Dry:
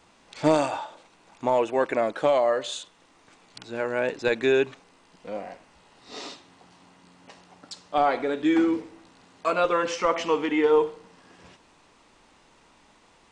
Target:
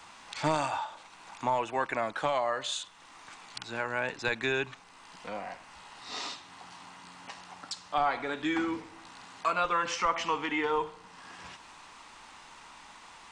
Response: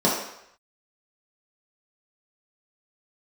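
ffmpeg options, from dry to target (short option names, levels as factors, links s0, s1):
-filter_complex "[0:a]lowshelf=f=690:t=q:w=1.5:g=-8,acrossover=split=160[s0][s1];[s1]acompressor=threshold=0.002:ratio=1.5[s2];[s0][s2]amix=inputs=2:normalize=0,volume=2.51"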